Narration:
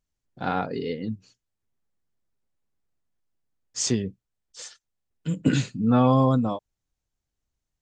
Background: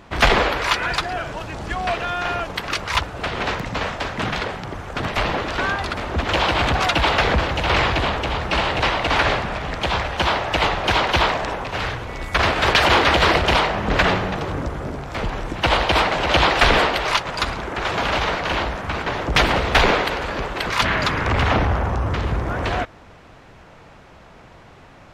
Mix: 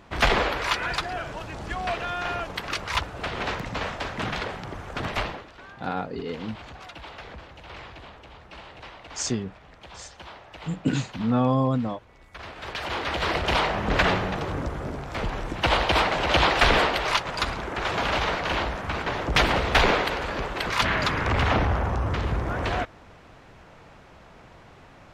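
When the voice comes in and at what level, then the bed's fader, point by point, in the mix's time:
5.40 s, -3.0 dB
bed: 5.19 s -5.5 dB
5.52 s -23.5 dB
12.34 s -23.5 dB
13.68 s -4 dB

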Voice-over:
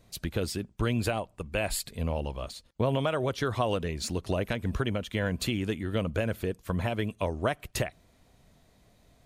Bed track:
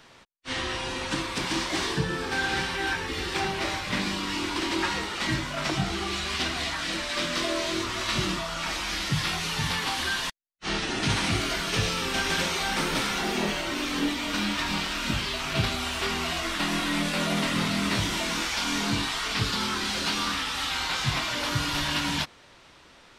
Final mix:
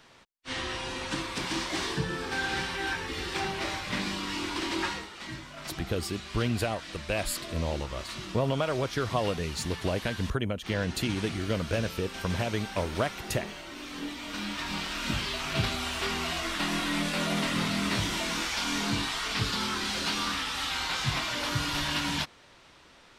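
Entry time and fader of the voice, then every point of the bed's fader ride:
5.55 s, -0.5 dB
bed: 4.87 s -3.5 dB
5.11 s -12.5 dB
13.68 s -12.5 dB
15.14 s -2.5 dB

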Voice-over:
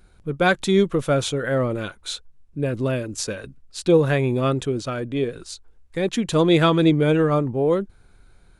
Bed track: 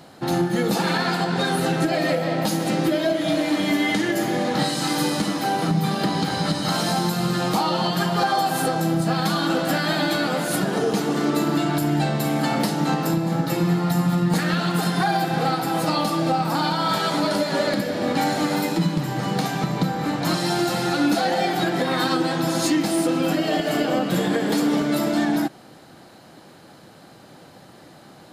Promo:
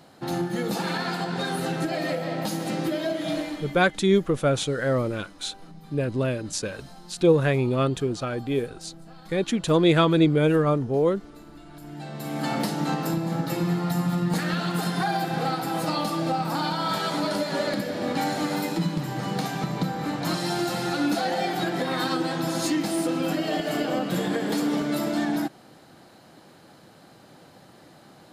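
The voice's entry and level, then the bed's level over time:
3.35 s, -2.0 dB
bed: 3.38 s -6 dB
3.9 s -25.5 dB
11.64 s -25.5 dB
12.49 s -4.5 dB

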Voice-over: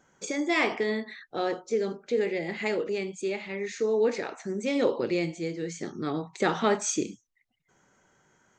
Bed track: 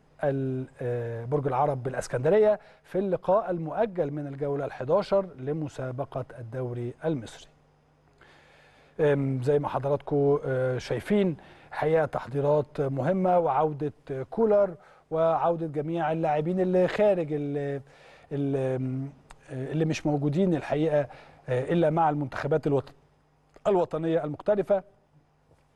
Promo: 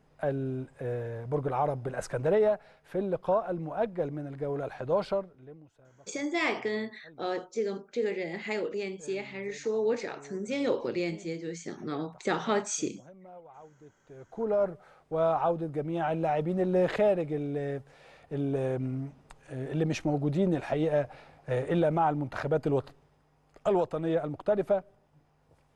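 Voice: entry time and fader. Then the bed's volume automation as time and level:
5.85 s, -3.5 dB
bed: 5.08 s -3.5 dB
5.76 s -26.5 dB
13.72 s -26.5 dB
14.67 s -2.5 dB

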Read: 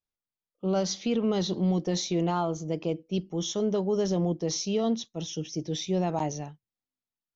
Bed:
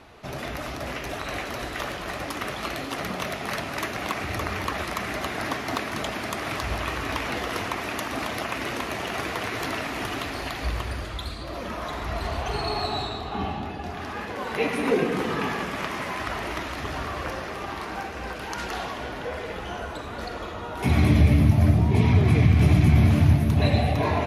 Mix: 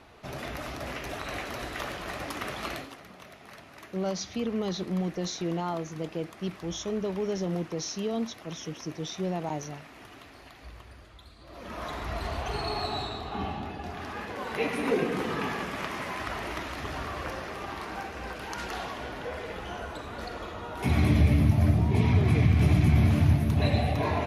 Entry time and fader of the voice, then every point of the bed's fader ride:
3.30 s, -4.0 dB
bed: 2.75 s -4 dB
3 s -18.5 dB
11.34 s -18.5 dB
11.81 s -4 dB

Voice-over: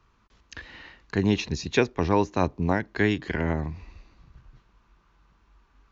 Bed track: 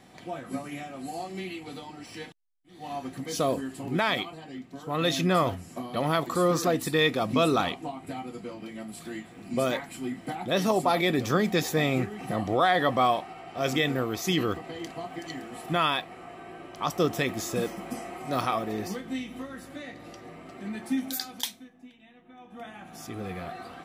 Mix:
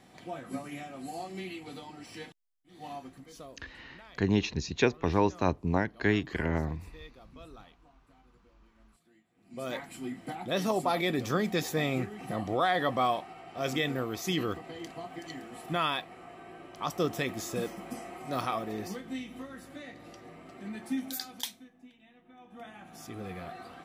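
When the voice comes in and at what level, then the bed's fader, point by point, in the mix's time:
3.05 s, -3.5 dB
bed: 2.85 s -3.5 dB
3.65 s -27.5 dB
9.27 s -27.5 dB
9.79 s -4.5 dB

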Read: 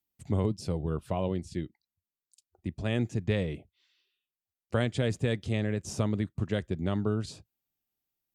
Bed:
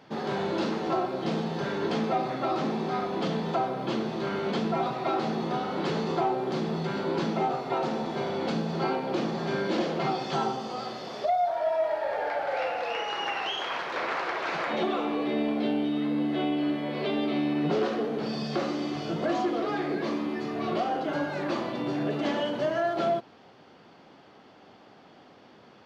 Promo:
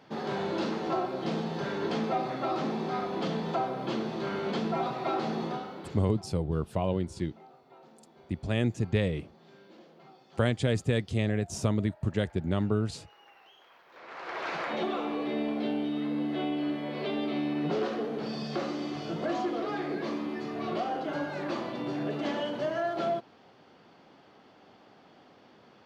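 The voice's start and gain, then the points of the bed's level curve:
5.65 s, +1.5 dB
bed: 5.45 s -2.5 dB
6.27 s -26.5 dB
13.83 s -26.5 dB
14.39 s -3.5 dB

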